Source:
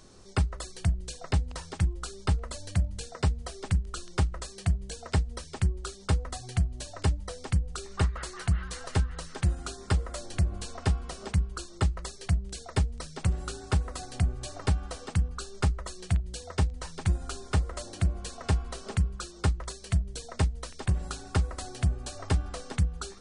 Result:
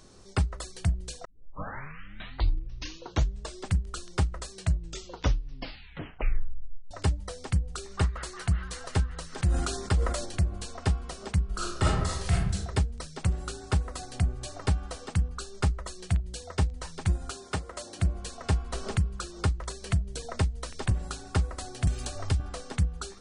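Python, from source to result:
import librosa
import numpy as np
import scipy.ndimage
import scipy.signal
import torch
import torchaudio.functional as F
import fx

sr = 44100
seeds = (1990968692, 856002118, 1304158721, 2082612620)

y = fx.sustainer(x, sr, db_per_s=47.0, at=(9.32, 10.37), fade=0.02)
y = fx.reverb_throw(y, sr, start_s=11.44, length_s=1.09, rt60_s=0.81, drr_db=-6.0)
y = fx.highpass(y, sr, hz=210.0, slope=6, at=(17.3, 17.99))
y = fx.band_squash(y, sr, depth_pct=70, at=(18.73, 20.91))
y = fx.band_squash(y, sr, depth_pct=100, at=(21.87, 22.4))
y = fx.edit(y, sr, fx.tape_start(start_s=1.25, length_s=2.48),
    fx.tape_stop(start_s=4.53, length_s=2.38), tone=tone)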